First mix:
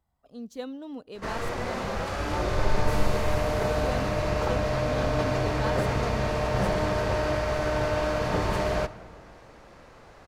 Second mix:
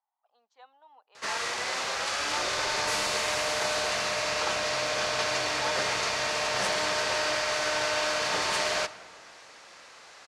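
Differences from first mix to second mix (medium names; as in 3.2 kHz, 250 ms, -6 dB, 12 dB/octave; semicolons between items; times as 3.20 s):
speech: add ladder band-pass 910 Hz, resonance 75%; master: add frequency weighting ITU-R 468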